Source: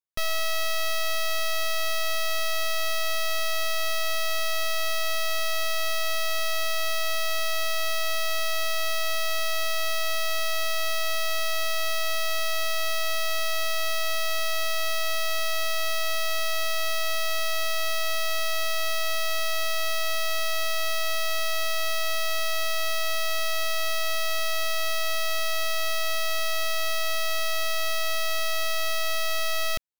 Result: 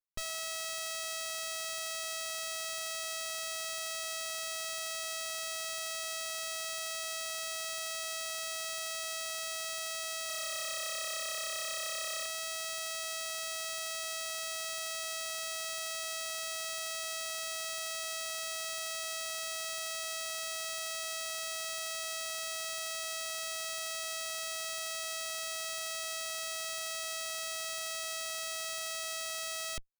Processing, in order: minimum comb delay 4.7 ms; 10.17–12.26 frequency-shifting echo 0.116 s, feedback 62%, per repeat -33 Hz, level -7 dB; gain -6.5 dB

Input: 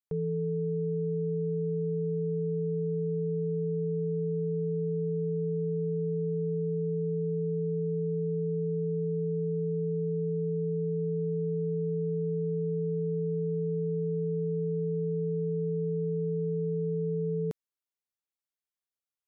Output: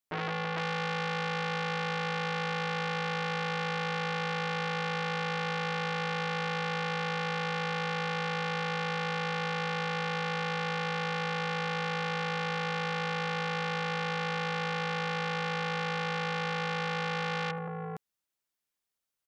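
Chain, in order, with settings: tapped delay 68/74/165/333/455 ms -13/-17/-9/-17/-7.5 dB; core saturation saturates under 2000 Hz; gain +5 dB

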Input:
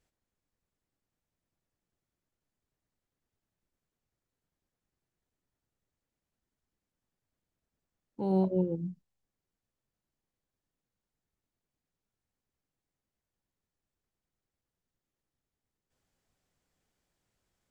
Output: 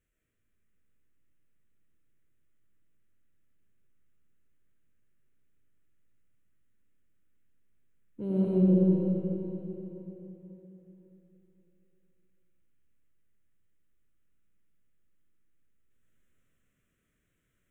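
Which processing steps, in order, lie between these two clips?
fixed phaser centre 2000 Hz, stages 4; digital reverb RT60 3.8 s, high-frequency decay 0.8×, pre-delay 55 ms, DRR -7 dB; gain -1 dB

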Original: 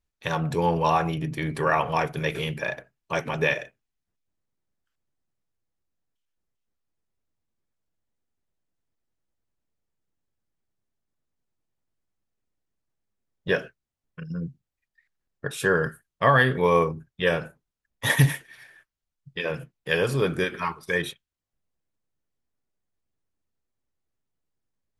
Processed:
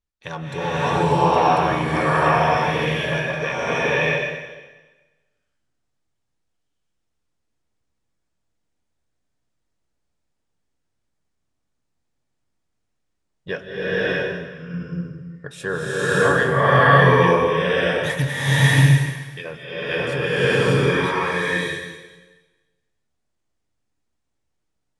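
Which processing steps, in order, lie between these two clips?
LPF 9600 Hz 24 dB/oct; bloom reverb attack 0.62 s, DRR -11.5 dB; gain -4.5 dB

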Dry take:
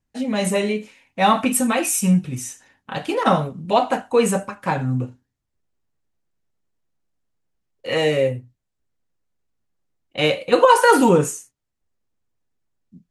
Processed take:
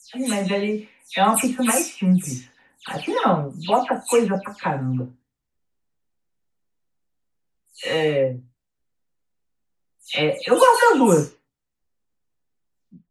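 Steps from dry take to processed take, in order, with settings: spectral delay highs early, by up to 0.184 s; gain -1 dB

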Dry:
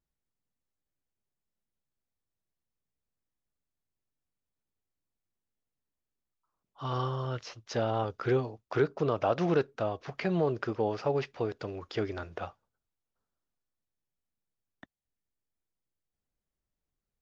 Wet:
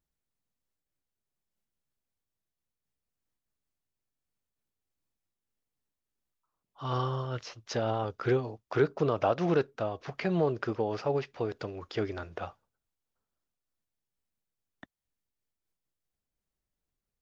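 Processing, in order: noise-modulated level, depth 55%; gain +3.5 dB

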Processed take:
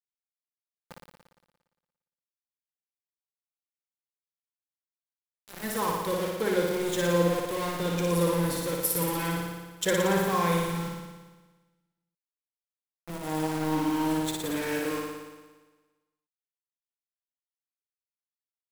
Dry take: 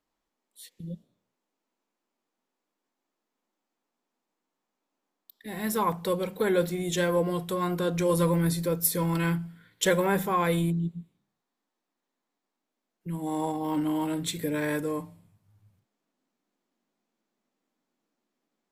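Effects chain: sample gate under -30 dBFS; flutter echo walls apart 9.9 m, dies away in 1.3 s; gain -3.5 dB

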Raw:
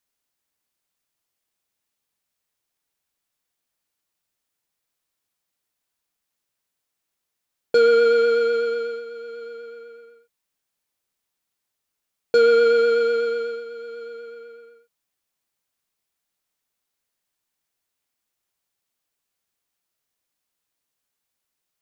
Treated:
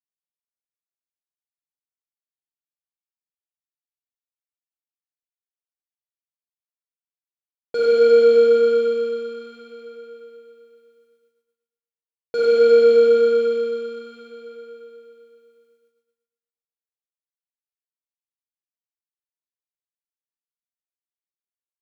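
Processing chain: Schroeder reverb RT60 3.1 s, DRR -6 dB; expander -50 dBFS; gain -8.5 dB

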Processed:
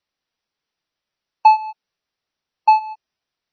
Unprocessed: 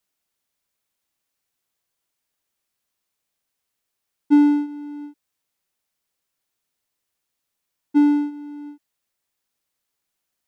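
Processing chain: wide varispeed 2.97×; gain +5.5 dB; MP3 24 kbps 24000 Hz

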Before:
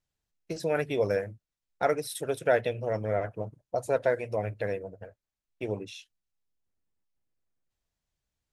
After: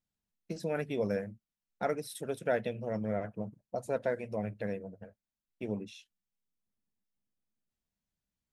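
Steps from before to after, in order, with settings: bell 210 Hz +13 dB 0.59 oct; gain -7 dB

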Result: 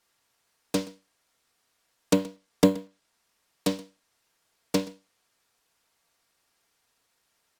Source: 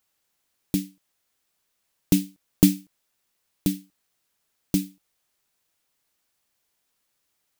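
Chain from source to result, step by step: minimum comb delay 4.3 ms; weighting filter A; treble ducked by the level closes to 1200 Hz, closed at -23 dBFS; in parallel at -7.5 dB: sample-and-hold 12×; on the sum: echo 0.125 s -21 dB; gain +5 dB

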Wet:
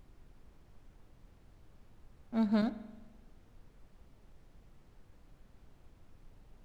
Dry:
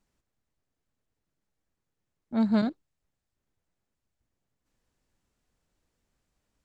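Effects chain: crossover distortion -48 dBFS; added noise brown -51 dBFS; spring tank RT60 1.2 s, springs 43 ms, chirp 45 ms, DRR 14.5 dB; gain -5 dB

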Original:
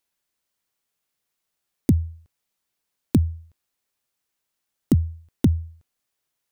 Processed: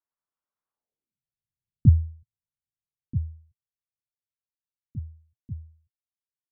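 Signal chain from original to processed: Doppler pass-by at 1.8, 9 m/s, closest 3.2 m; low-pass sweep 1200 Hz -> 120 Hz, 0.72–1.26

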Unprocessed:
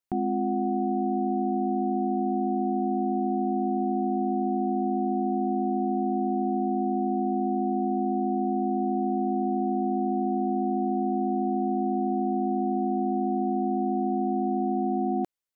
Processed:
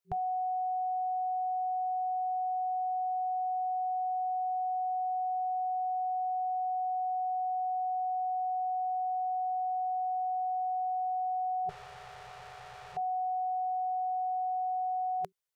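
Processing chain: 11.69–12.97 tube stage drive 44 dB, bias 0.65; FFT band-reject 180–380 Hz

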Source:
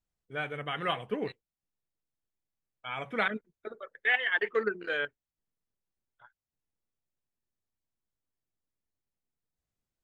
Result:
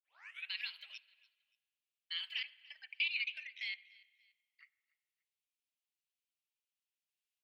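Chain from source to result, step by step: tape start at the beginning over 0.68 s; compressor, threshold -36 dBFS, peak gain reduction 14.5 dB; speed mistake 33 rpm record played at 45 rpm; ladder high-pass 2300 Hz, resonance 50%; on a send: feedback echo 0.289 s, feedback 37%, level -23 dB; on the sum: spring tank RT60 1.5 s, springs 39/48 ms, chirp 25 ms, DRR 19.5 dB; gain +7.5 dB

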